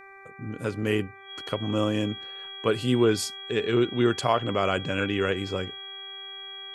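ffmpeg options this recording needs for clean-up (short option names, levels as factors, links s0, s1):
-af "bandreject=f=391:t=h:w=4,bandreject=f=782:t=h:w=4,bandreject=f=1173:t=h:w=4,bandreject=f=1564:t=h:w=4,bandreject=f=1955:t=h:w=4,bandreject=f=2346:t=h:w=4,bandreject=f=3300:w=30"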